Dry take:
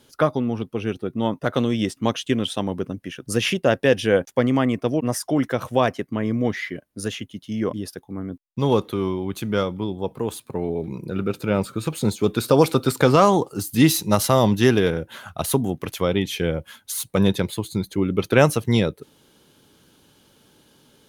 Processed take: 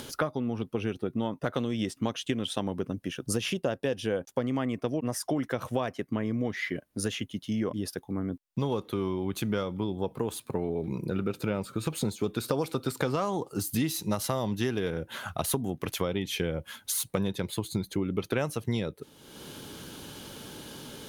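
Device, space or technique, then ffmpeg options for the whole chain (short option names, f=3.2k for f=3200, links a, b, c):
upward and downward compression: -filter_complex "[0:a]acompressor=mode=upward:threshold=-31dB:ratio=2.5,acompressor=threshold=-26dB:ratio=6,asettb=1/sr,asplit=3[a][b][c];[a]atrim=end=2.944[d];[b]atrim=start=2.94:end=4.44,asetpts=PTS-STARTPTS,afade=t=in:d=0.004:c=qsin,afade=t=out:st=1.496:d=0.004:c=qsin,equalizer=f=2k:w=2:g=-5.5[e];[c]atrim=start=4.436[f];[d][e]acrossfade=d=0.004:c1=hsin:c2=qsin[g];[g][f]acrossfade=d=0.004:c1=qsin:c2=hsin"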